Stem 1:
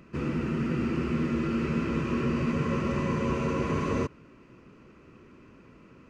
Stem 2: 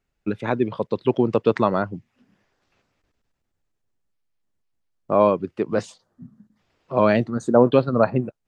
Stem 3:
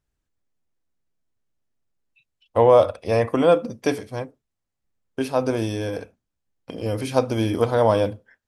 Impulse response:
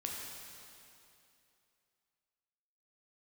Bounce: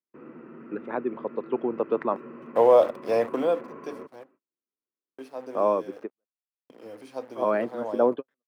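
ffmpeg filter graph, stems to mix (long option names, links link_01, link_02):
-filter_complex "[0:a]highshelf=frequency=3400:gain=-11,aeval=exprs='0.178*(cos(1*acos(clip(val(0)/0.178,-1,1)))-cos(1*PI/2))+0.0178*(cos(3*acos(clip(val(0)/0.178,-1,1)))-cos(3*PI/2))':channel_layout=same,volume=-7.5dB[link_01];[1:a]adelay=450,volume=-5.5dB[link_02];[2:a]firequalizer=gain_entry='entry(110,0);entry(1400,-5);entry(4400,13)':delay=0.05:min_phase=1,acrusher=bits=6:dc=4:mix=0:aa=0.000001,volume=-0.5dB,afade=type=out:start_time=3.17:duration=0.56:silence=0.237137,asplit=2[link_03][link_04];[link_04]apad=whole_len=393391[link_05];[link_02][link_05]sidechaingate=range=-59dB:threshold=-47dB:ratio=16:detection=peak[link_06];[link_01][link_06][link_03]amix=inputs=3:normalize=0,highpass=180,agate=range=-34dB:threshold=-56dB:ratio=16:detection=peak,acrossover=split=240 2100:gain=0.2 1 0.0794[link_07][link_08][link_09];[link_07][link_08][link_09]amix=inputs=3:normalize=0"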